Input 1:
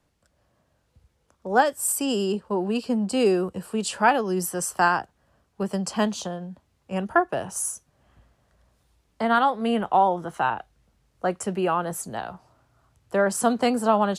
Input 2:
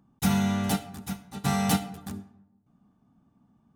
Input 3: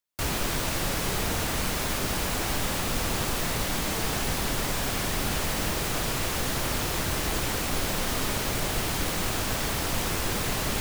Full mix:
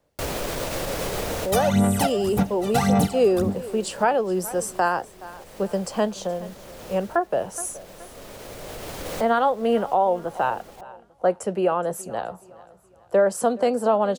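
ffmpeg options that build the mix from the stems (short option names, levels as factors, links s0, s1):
-filter_complex "[0:a]volume=0.75,asplit=3[s0][s1][s2];[s1]volume=0.0944[s3];[1:a]aphaser=in_gain=1:out_gain=1:delay=1.7:decay=0.78:speed=1.8:type=sinusoidal,adelay=1300,volume=1.41[s4];[2:a]alimiter=limit=0.0944:level=0:latency=1:release=63,volume=1[s5];[s2]apad=whole_len=476661[s6];[s5][s6]sidechaincompress=threshold=0.00501:ratio=4:attack=21:release=1190[s7];[s3]aecho=0:1:422|844|1266|1688|2110:1|0.38|0.144|0.0549|0.0209[s8];[s0][s4][s7][s8]amix=inputs=4:normalize=0,equalizer=f=530:w=1.6:g=11,alimiter=limit=0.316:level=0:latency=1:release=261"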